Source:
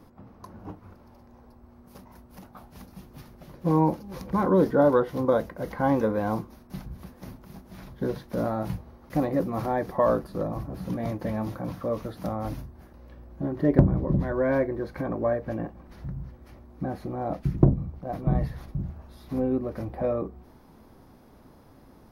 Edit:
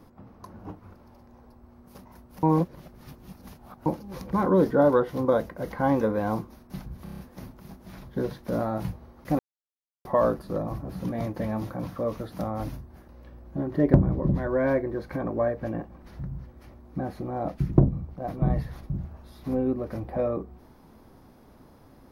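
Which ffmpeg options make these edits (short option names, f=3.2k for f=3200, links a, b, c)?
-filter_complex "[0:a]asplit=10[a][b][c][d][e][f][g][h][i][j];[a]atrim=end=2.432[k];[b]atrim=start=2.428:end=3.862,asetpts=PTS-STARTPTS,areverse[l];[c]atrim=start=3.858:end=7.072[m];[d]atrim=start=7.038:end=7.072[n];[e]atrim=start=7.038:end=7.072[o];[f]atrim=start=7.038:end=7.072[p];[g]atrim=start=7.038:end=7.072[q];[h]atrim=start=7.038:end=9.24,asetpts=PTS-STARTPTS,afade=t=out:st=2.198:d=0.004:c=hsin[r];[i]atrim=start=9.24:end=9.9,asetpts=PTS-STARTPTS,volume=0[s];[j]atrim=start=9.9,asetpts=PTS-STARTPTS,afade=t=in:d=0.004:c=hsin[t];[k][l]acrossfade=d=0.004:c1=hsin:c2=hsin[u];[u][m]acrossfade=d=0.004:c1=hsin:c2=hsin[v];[v][n]acrossfade=d=0.004:c1=hsin:c2=hsin[w];[w][o]acrossfade=d=0.004:c1=hsin:c2=hsin[x];[x][p]acrossfade=d=0.004:c1=hsin:c2=hsin[y];[y][q]acrossfade=d=0.004:c1=hsin:c2=hsin[z];[r][s][t]concat=n=3:v=0:a=1[aa];[z][aa]acrossfade=d=0.004:c1=hsin:c2=hsin"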